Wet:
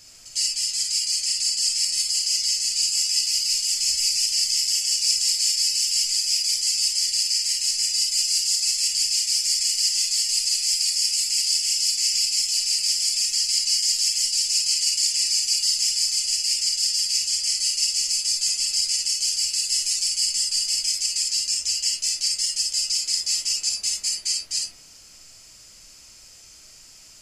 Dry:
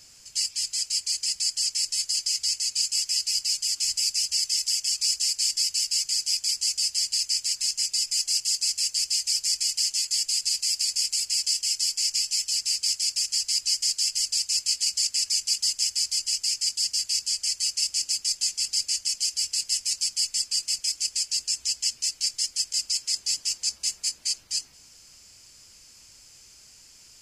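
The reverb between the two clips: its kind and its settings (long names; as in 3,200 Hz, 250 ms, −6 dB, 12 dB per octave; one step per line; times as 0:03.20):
comb and all-pass reverb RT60 0.53 s, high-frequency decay 0.35×, pre-delay 10 ms, DRR −0.5 dB
level +1.5 dB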